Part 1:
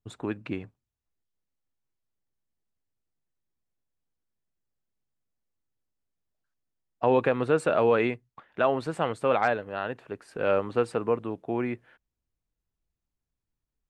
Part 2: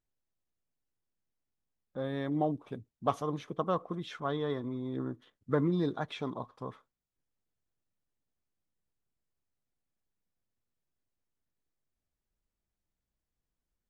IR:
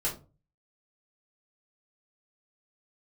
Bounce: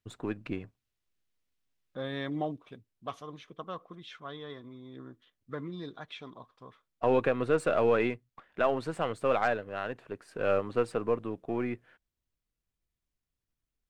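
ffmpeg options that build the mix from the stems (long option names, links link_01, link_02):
-filter_complex "[0:a]aeval=exprs='if(lt(val(0),0),0.708*val(0),val(0))':channel_layout=same,volume=-1.5dB[link_01];[1:a]equalizer=frequency=2900:width=0.59:gain=10,volume=-2dB,afade=type=out:start_time=2.26:duration=0.59:silence=0.354813[link_02];[link_01][link_02]amix=inputs=2:normalize=0,bandreject=frequency=860:width=12"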